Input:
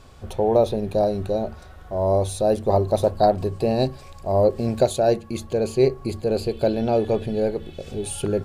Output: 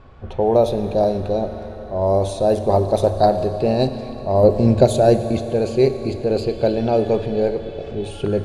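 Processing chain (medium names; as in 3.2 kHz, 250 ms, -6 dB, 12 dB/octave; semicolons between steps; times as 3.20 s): level-controlled noise filter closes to 2.1 kHz, open at -14 dBFS; 4.43–5.40 s: bass shelf 380 Hz +7.5 dB; Schroeder reverb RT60 3.7 s, combs from 27 ms, DRR 9.5 dB; trim +2.5 dB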